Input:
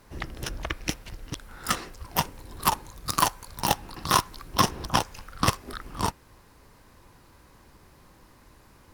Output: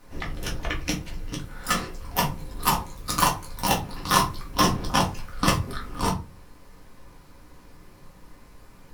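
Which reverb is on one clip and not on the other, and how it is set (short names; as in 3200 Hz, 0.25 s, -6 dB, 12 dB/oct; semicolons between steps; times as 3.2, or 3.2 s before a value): shoebox room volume 120 m³, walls furnished, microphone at 1.9 m; gain -2 dB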